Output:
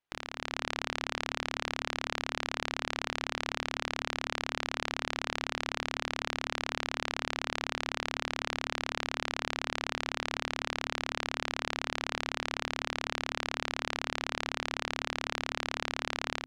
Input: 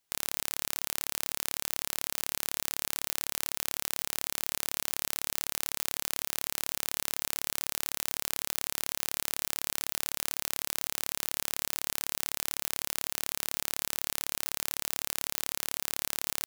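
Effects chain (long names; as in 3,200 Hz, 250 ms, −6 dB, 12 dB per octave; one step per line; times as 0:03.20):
reverb reduction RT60 1.1 s
low-pass filter 2,700 Hz 12 dB per octave
mains-hum notches 50/100/150/200/250/300 Hz
transient designer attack +7 dB, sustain +1 dB
automatic gain control gain up to 12 dB
brickwall limiter −7.5 dBFS, peak gain reduction 3.5 dB
level −4.5 dB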